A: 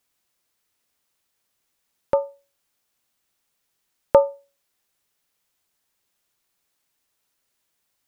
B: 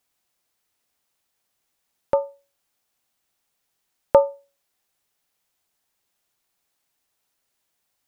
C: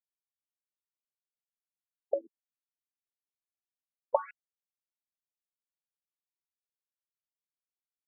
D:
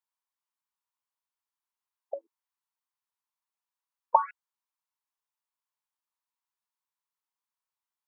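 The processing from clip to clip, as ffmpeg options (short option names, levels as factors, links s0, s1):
-af "equalizer=f=750:w=3.5:g=4,volume=0.891"
-af "acompressor=threshold=0.141:ratio=4,aresample=11025,acrusher=bits=3:dc=4:mix=0:aa=0.000001,aresample=44100,afftfilt=real='re*between(b*sr/1024,300*pow(2200/300,0.5+0.5*sin(2*PI*1.2*pts/sr))/1.41,300*pow(2200/300,0.5+0.5*sin(2*PI*1.2*pts/sr))*1.41)':imag='im*between(b*sr/1024,300*pow(2200/300,0.5+0.5*sin(2*PI*1.2*pts/sr))/1.41,300*pow(2200/300,0.5+0.5*sin(2*PI*1.2*pts/sr))*1.41)':win_size=1024:overlap=0.75,volume=0.708"
-af "highpass=f=970:t=q:w=4.9"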